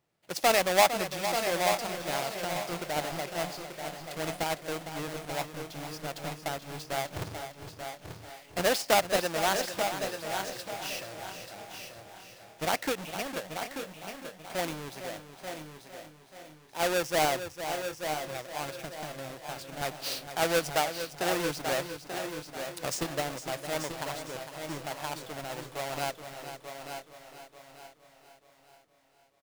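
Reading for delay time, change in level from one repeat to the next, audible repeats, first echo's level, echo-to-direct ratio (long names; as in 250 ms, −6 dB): 456 ms, repeats not evenly spaced, 8, −10.5 dB, −5.0 dB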